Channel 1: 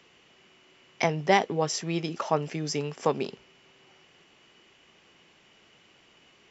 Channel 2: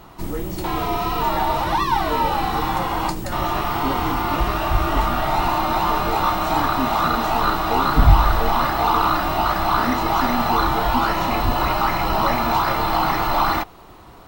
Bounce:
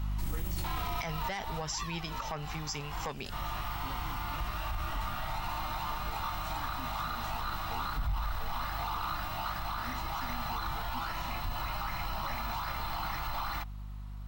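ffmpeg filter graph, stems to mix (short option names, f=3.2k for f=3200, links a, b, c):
-filter_complex "[0:a]volume=-1dB,asplit=2[a][b];[1:a]aeval=exprs='val(0)+0.0398*(sin(2*PI*50*n/s)+sin(2*PI*2*50*n/s)/2+sin(2*PI*3*50*n/s)/3+sin(2*PI*4*50*n/s)/4+sin(2*PI*5*50*n/s)/5)':c=same,volume=-2dB,afade=t=out:st=1.2:d=0.66:silence=0.354813[c];[b]apad=whole_len=629474[d];[c][d]sidechaincompress=threshold=-36dB:ratio=8:attack=12:release=138[e];[a][e]amix=inputs=2:normalize=0,asoftclip=type=tanh:threshold=-14.5dB,equalizer=f=380:t=o:w=1.9:g=-14.5,alimiter=level_in=2dB:limit=-24dB:level=0:latency=1:release=41,volume=-2dB"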